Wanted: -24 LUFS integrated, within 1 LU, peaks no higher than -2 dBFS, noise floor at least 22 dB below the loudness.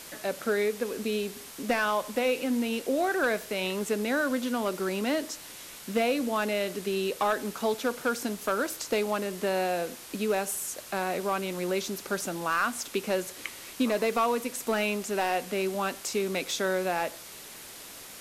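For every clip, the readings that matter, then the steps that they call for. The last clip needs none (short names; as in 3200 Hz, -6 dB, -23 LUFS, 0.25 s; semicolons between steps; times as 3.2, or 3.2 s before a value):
clipped 0.3%; flat tops at -18.5 dBFS; noise floor -45 dBFS; noise floor target -52 dBFS; loudness -29.5 LUFS; peak -18.5 dBFS; loudness target -24.0 LUFS
-> clip repair -18.5 dBFS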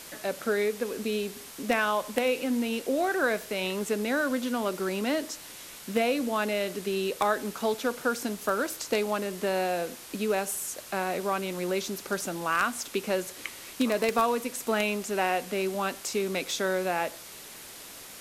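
clipped 0.0%; noise floor -45 dBFS; noise floor target -51 dBFS
-> denoiser 6 dB, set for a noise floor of -45 dBFS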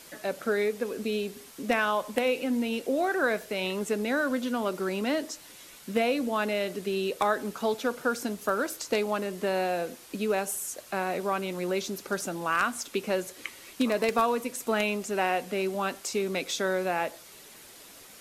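noise floor -50 dBFS; noise floor target -52 dBFS
-> denoiser 6 dB, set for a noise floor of -50 dBFS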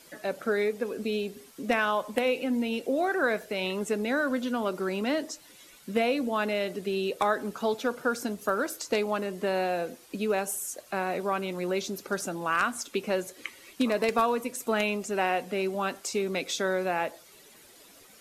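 noise floor -54 dBFS; loudness -29.5 LUFS; peak -10.0 dBFS; loudness target -24.0 LUFS
-> gain +5.5 dB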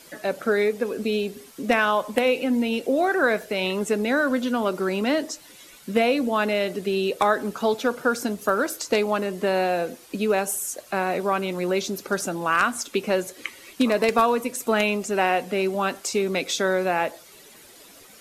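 loudness -24.0 LUFS; peak -4.5 dBFS; noise floor -49 dBFS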